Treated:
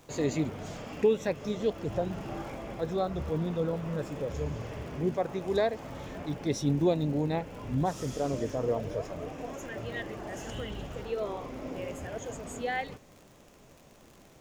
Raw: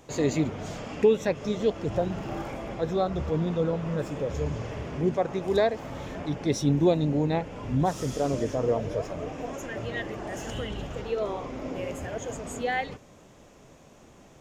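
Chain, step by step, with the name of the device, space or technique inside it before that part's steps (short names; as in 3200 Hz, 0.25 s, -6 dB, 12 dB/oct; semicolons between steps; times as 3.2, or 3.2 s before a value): vinyl LP (crackle 69/s -39 dBFS; pink noise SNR 33 dB); gain -4 dB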